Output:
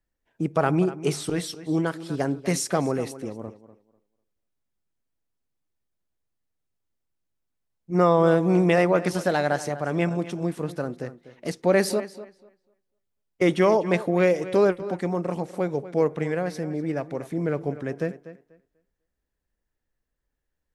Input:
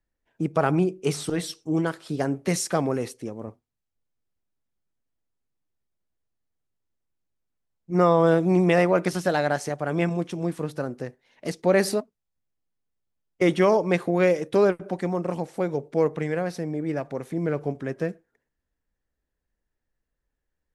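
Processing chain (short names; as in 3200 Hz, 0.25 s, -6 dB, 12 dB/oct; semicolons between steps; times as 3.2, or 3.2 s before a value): tape echo 0.246 s, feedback 21%, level -14 dB, low-pass 4200 Hz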